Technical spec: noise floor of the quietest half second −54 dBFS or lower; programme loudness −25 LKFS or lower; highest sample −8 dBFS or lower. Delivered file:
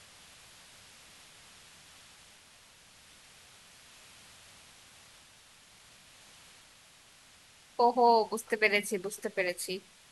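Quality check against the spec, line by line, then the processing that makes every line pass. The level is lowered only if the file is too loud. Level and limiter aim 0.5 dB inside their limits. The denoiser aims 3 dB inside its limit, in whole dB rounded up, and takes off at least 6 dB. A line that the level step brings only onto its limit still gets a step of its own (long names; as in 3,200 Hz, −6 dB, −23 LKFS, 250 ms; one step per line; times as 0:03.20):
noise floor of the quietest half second −59 dBFS: in spec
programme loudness −29.0 LKFS: in spec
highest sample −10.0 dBFS: in spec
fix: no processing needed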